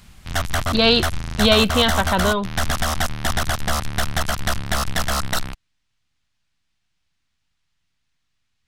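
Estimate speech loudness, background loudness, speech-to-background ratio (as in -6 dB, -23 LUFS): -18.5 LUFS, -23.5 LUFS, 5.0 dB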